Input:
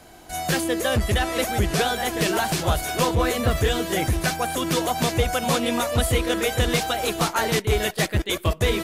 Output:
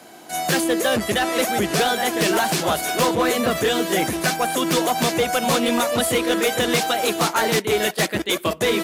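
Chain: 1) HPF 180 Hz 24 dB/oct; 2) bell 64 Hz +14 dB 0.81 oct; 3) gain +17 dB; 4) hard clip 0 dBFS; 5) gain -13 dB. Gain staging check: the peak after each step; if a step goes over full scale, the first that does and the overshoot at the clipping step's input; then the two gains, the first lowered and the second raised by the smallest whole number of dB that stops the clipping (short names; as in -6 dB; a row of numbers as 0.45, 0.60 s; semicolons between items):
-8.0, -7.5, +9.5, 0.0, -13.0 dBFS; step 3, 9.5 dB; step 3 +7 dB, step 5 -3 dB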